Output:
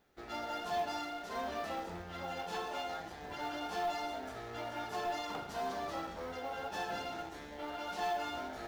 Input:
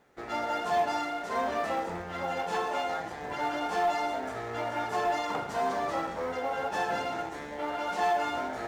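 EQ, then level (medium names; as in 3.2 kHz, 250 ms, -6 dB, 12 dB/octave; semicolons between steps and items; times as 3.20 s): graphic EQ 125/250/500/1000/2000/8000 Hz -8/-5/-8/-8/-8/-8 dB; +1.0 dB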